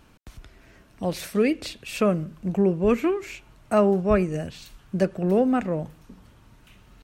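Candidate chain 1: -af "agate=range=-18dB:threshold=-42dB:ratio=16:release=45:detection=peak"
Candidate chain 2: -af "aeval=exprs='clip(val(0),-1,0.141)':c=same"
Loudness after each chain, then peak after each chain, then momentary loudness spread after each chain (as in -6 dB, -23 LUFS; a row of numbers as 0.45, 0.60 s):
-24.5, -25.0 LUFS; -8.5, -8.5 dBFS; 13, 12 LU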